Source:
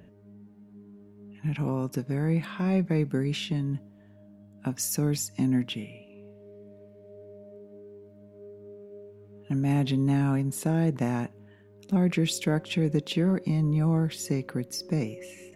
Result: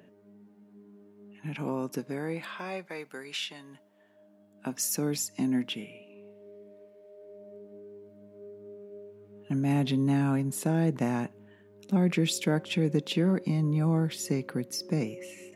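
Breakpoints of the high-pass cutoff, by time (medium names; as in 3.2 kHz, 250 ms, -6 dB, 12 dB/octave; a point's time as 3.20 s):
1.98 s 240 Hz
2.93 s 790 Hz
3.57 s 790 Hz
4.84 s 230 Hz
6.54 s 230 Hz
7.16 s 500 Hz
7.57 s 140 Hz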